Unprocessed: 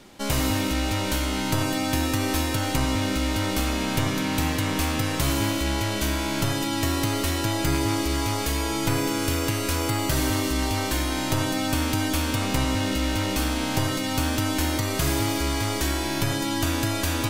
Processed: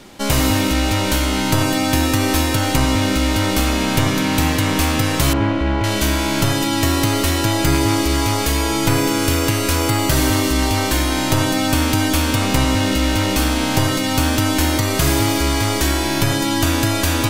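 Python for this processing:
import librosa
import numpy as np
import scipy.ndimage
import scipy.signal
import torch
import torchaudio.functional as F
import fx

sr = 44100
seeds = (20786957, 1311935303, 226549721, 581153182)

y = fx.lowpass(x, sr, hz=1900.0, slope=12, at=(5.33, 5.84))
y = y * librosa.db_to_amplitude(7.5)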